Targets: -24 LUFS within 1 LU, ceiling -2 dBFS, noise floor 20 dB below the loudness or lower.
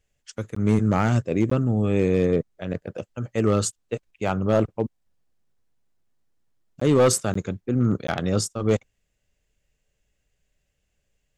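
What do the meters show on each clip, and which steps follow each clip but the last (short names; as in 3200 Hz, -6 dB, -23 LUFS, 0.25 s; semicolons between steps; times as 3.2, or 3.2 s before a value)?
clipped 0.6%; flat tops at -12.0 dBFS; dropouts 5; longest dropout 14 ms; loudness -23.5 LUFS; peak -12.0 dBFS; loudness target -24.0 LUFS
-> clip repair -12 dBFS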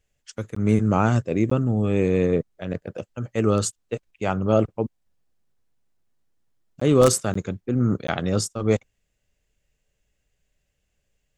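clipped 0.0%; dropouts 5; longest dropout 14 ms
-> interpolate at 0.55/1.5/6.8/7.34/8.07, 14 ms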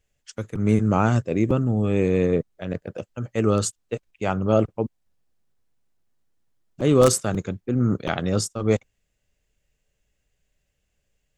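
dropouts 0; loudness -23.0 LUFS; peak -3.0 dBFS; loudness target -24.0 LUFS
-> gain -1 dB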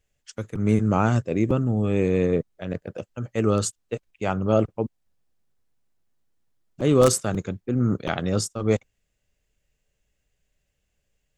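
loudness -24.0 LUFS; peak -4.0 dBFS; noise floor -76 dBFS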